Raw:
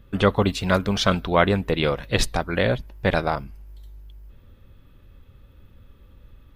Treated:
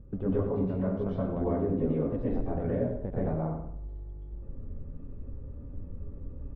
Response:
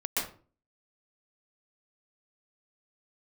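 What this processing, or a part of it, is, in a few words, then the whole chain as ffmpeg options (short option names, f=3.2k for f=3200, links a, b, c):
television next door: -filter_complex "[0:a]asettb=1/sr,asplit=3[a][b][c];[a]atrim=end=1.384[d];[b]atrim=start=1.38:end=2.22,asetpts=PTS-STARTPTS,afade=t=in:d=0.004:c=qsin,afade=t=out:st=0.836:d=0.004:c=qsin,equalizer=f=260:w=7:g=15[e];[c]atrim=start=2.216[f];[d][e]acrossfade=d=0.004:c1=hsin:c2=qsin[g];[g][f]acrossfade=d=0.004:c1=qsin:c2=hsin,acompressor=threshold=-35dB:ratio=5,lowpass=510[h];[1:a]atrim=start_sample=2205[i];[h][i]afir=irnorm=-1:irlink=0,asplit=2[j][k];[k]adelay=94,lowpass=f=3.5k:p=1,volume=-8dB,asplit=2[l][m];[m]adelay=94,lowpass=f=3.5k:p=1,volume=0.4,asplit=2[n][o];[o]adelay=94,lowpass=f=3.5k:p=1,volume=0.4,asplit=2[p][q];[q]adelay=94,lowpass=f=3.5k:p=1,volume=0.4,asplit=2[r][s];[s]adelay=94,lowpass=f=3.5k:p=1,volume=0.4[t];[j][l][n][p][r][t]amix=inputs=6:normalize=0,volume=2.5dB"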